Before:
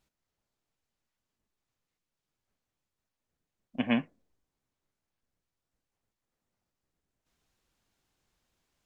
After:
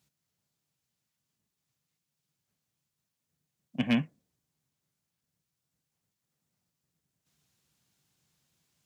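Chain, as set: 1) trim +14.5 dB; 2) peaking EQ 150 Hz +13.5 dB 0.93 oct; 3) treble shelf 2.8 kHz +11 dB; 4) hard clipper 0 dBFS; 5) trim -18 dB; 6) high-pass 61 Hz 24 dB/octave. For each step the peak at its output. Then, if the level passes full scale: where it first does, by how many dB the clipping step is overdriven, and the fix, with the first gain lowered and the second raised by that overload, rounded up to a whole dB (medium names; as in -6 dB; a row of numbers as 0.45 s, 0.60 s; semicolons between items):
+0.5 dBFS, +4.0 dBFS, +6.0 dBFS, 0.0 dBFS, -18.0 dBFS, -15.0 dBFS; step 1, 6.0 dB; step 1 +8.5 dB, step 5 -12 dB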